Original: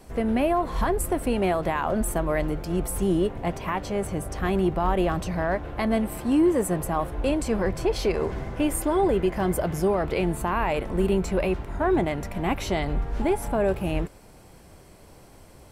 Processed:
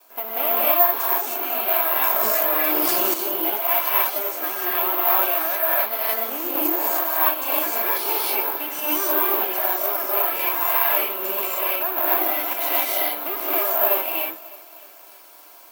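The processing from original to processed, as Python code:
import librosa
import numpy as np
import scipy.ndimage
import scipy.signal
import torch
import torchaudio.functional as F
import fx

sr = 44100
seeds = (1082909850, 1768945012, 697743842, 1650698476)

y = fx.lower_of_two(x, sr, delay_ms=3.0)
y = fx.bandpass_edges(y, sr, low_hz=790.0, high_hz=6100.0)
y = fx.notch(y, sr, hz=1900.0, q=6.8)
y = fx.echo_feedback(y, sr, ms=305, feedback_pct=55, wet_db=-20.5)
y = fx.rev_gated(y, sr, seeds[0], gate_ms=330, shape='rising', drr_db=-7.5)
y = fx.rider(y, sr, range_db=4, speed_s=2.0)
y = (np.kron(y[::3], np.eye(3)[0]) * 3)[:len(y)]
y = fx.env_flatten(y, sr, amount_pct=100, at=(2.2, 3.14))
y = y * 10.0 ** (-1.5 / 20.0)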